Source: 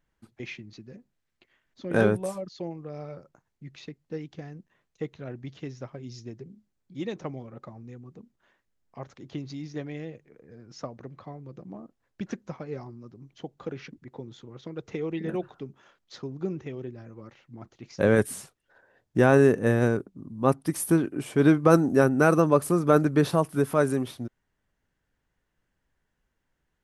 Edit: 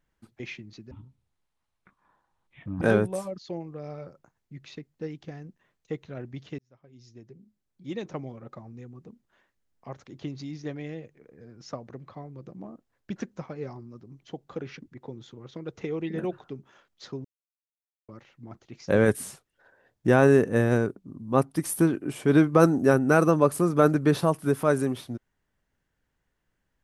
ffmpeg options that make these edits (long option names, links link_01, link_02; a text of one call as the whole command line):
ffmpeg -i in.wav -filter_complex "[0:a]asplit=6[link_01][link_02][link_03][link_04][link_05][link_06];[link_01]atrim=end=0.914[link_07];[link_02]atrim=start=0.91:end=1.92,asetpts=PTS-STARTPTS,asetrate=23373,aresample=44100[link_08];[link_03]atrim=start=1.916:end=5.69,asetpts=PTS-STARTPTS,afade=type=out:start_time=3.77:duration=0.004:curve=hsin[link_09];[link_04]atrim=start=5.69:end=16.35,asetpts=PTS-STARTPTS,afade=type=in:duration=1.57,afade=type=out:start_time=10.656:duration=0.004:curve=hsin[link_10];[link_05]atrim=start=16.35:end=17.19,asetpts=PTS-STARTPTS,volume=0[link_11];[link_06]atrim=start=17.19,asetpts=PTS-STARTPTS,afade=type=in:duration=0.004:curve=hsin[link_12];[link_07][link_08]acrossfade=duration=0.004:curve1=hsin:curve2=hsin[link_13];[link_09][link_10][link_11][link_12]concat=n=4:v=0:a=1[link_14];[link_13][link_14]acrossfade=duration=0.004:curve1=hsin:curve2=hsin" out.wav